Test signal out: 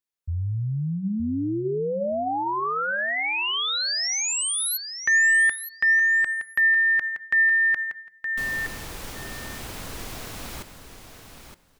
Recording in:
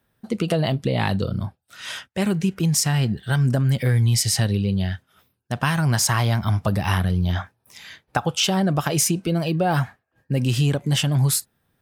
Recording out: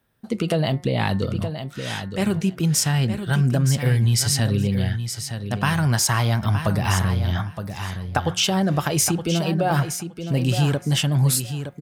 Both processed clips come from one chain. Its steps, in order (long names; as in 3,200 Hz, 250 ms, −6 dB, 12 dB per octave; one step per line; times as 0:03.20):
hum removal 179.1 Hz, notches 12
on a send: repeating echo 918 ms, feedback 15%, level −9 dB